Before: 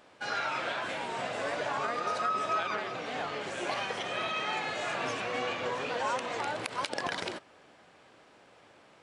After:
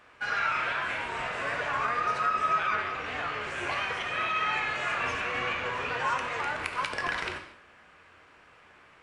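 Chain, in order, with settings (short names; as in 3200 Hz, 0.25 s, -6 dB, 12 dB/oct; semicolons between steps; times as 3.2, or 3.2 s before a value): octaver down 2 oct, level -2 dB; band shelf 1700 Hz +8.5 dB; non-linear reverb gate 0.27 s falling, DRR 4.5 dB; gain -4 dB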